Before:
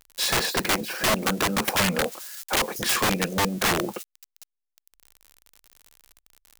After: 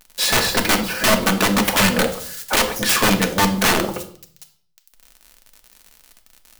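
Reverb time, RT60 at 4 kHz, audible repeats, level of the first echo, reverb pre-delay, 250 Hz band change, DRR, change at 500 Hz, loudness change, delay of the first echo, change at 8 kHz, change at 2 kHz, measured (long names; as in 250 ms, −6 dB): 0.55 s, 0.50 s, no echo audible, no echo audible, 3 ms, +8.0 dB, 4.5 dB, +6.0 dB, +6.5 dB, no echo audible, +6.0 dB, +6.5 dB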